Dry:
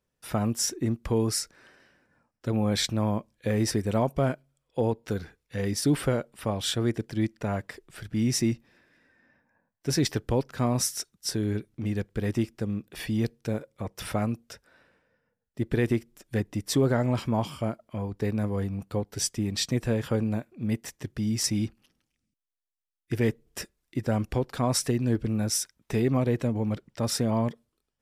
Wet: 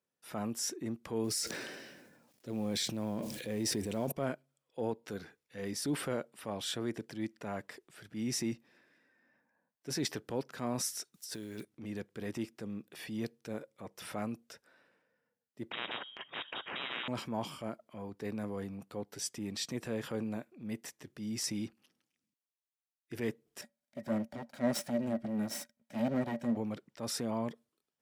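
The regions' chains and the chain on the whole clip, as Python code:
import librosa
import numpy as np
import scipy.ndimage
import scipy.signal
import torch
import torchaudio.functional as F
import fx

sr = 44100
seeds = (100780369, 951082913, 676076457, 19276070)

y = fx.chain(x, sr, fx.law_mismatch(coded='mu'),
    fx.peak_eq(hz=1200.0, db=-9.5, octaves=1.4),
    fx.sustainer(db_per_s=37.0), at=(1.24, 4.12))
y = fx.chain(y, sr, fx.block_float(bits=7),
    fx.high_shelf(hz=2800.0, db=10.0),
    fx.over_compress(threshold_db=-34.0, ratio=-1.0), at=(11.14, 11.65))
y = fx.chain(y, sr, fx.cheby1_highpass(hz=220.0, order=3),
    fx.freq_invert(carrier_hz=3500),
    fx.spectral_comp(ratio=10.0), at=(15.71, 17.08))
y = fx.chain(y, sr, fx.lower_of_two(delay_ms=1.3),
    fx.small_body(hz=(230.0, 580.0, 1900.0), ring_ms=85, db=17),
    fx.upward_expand(threshold_db=-29.0, expansion=1.5), at=(23.61, 26.57))
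y = scipy.signal.sosfilt(scipy.signal.butter(2, 190.0, 'highpass', fs=sr, output='sos'), y)
y = fx.transient(y, sr, attack_db=-5, sustain_db=3)
y = y * librosa.db_to_amplitude(-7.0)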